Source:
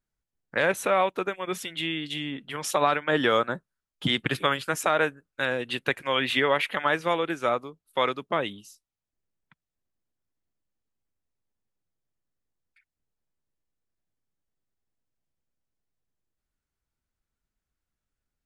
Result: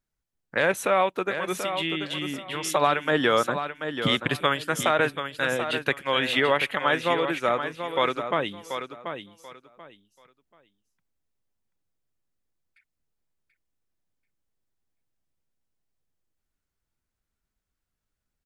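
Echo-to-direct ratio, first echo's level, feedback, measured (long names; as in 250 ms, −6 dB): −8.5 dB, −8.5 dB, 22%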